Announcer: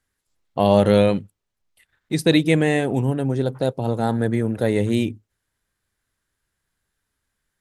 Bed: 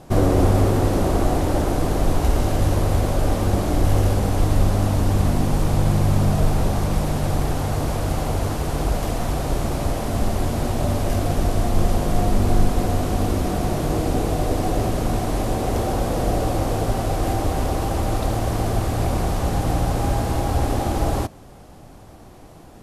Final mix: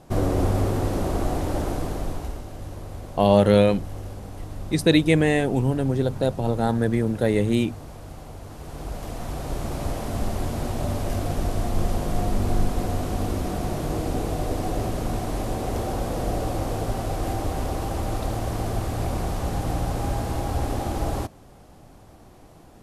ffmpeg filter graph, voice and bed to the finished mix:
-filter_complex "[0:a]adelay=2600,volume=0.891[s0];[1:a]volume=2.11,afade=t=out:st=1.68:d=0.75:silence=0.266073,afade=t=in:st=8.45:d=1.43:silence=0.251189[s1];[s0][s1]amix=inputs=2:normalize=0"

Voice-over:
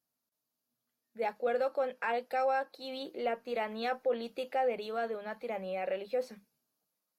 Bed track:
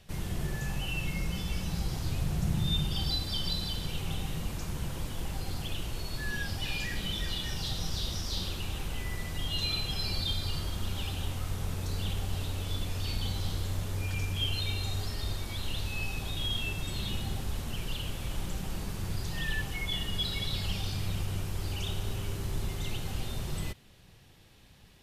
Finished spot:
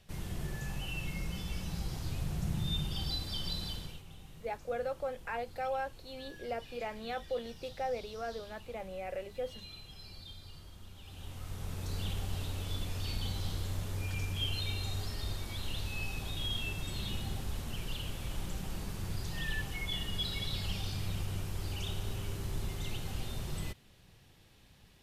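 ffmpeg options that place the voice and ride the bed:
-filter_complex "[0:a]adelay=3250,volume=0.562[s0];[1:a]volume=2.82,afade=t=out:st=3.7:d=0.33:silence=0.237137,afade=t=in:st=11.02:d=0.95:silence=0.199526[s1];[s0][s1]amix=inputs=2:normalize=0"

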